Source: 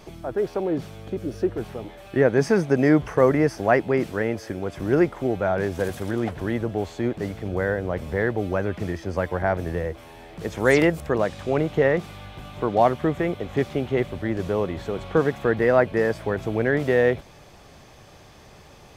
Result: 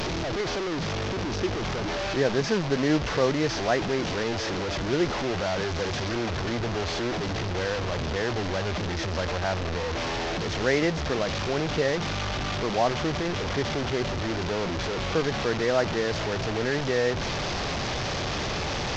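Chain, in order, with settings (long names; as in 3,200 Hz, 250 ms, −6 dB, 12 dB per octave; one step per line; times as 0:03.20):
linear delta modulator 32 kbit/s, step −17 dBFS
level −6 dB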